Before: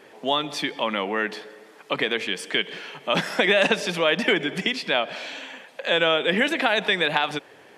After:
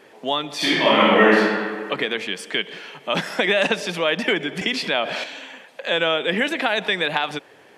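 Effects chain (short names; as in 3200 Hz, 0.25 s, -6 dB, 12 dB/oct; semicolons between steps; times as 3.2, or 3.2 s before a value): 0.56–1.38 reverb throw, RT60 1.8 s, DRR -10.5 dB; 4.61–5.24 fast leveller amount 50%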